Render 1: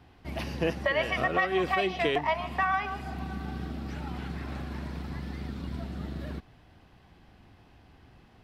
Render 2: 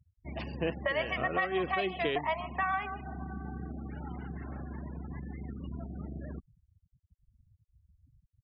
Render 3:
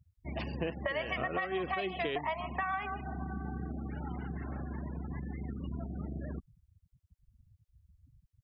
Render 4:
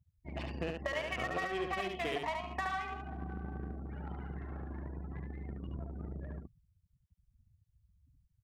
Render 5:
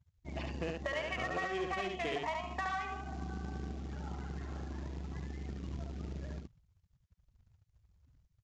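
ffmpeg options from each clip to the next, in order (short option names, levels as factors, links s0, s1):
-af "afftfilt=real='re*gte(hypot(re,im),0.0126)':imag='im*gte(hypot(re,im),0.0126)':win_size=1024:overlap=0.75,volume=0.631"
-af "acompressor=threshold=0.0251:ratio=5,volume=1.19"
-filter_complex "[0:a]asplit=2[s0][s1];[s1]acrusher=bits=4:mix=0:aa=0.5,volume=0.531[s2];[s0][s2]amix=inputs=2:normalize=0,aecho=1:1:72:0.631,volume=0.473"
-af "acrusher=bits=4:mode=log:mix=0:aa=0.000001,aresample=16000,aresample=44100,asoftclip=type=tanh:threshold=0.0422,volume=1.12"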